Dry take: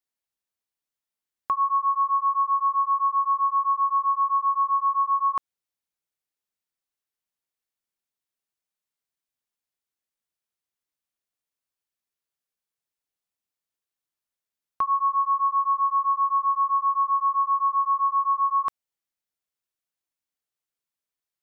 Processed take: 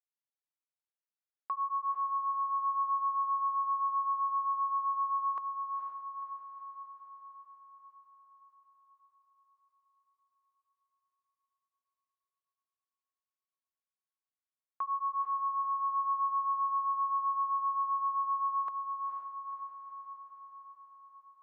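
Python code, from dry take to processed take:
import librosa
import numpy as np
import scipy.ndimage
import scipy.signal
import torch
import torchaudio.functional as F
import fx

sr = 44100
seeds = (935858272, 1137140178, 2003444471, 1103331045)

y = scipy.signal.sosfilt(scipy.signal.butter(2, 1000.0, 'highpass', fs=sr, output='sos'), x)
y = fx.tilt_eq(y, sr, slope=-5.5)
y = fx.echo_diffused(y, sr, ms=487, feedback_pct=60, wet_db=-5.5)
y = y * librosa.db_to_amplitude(-7.5)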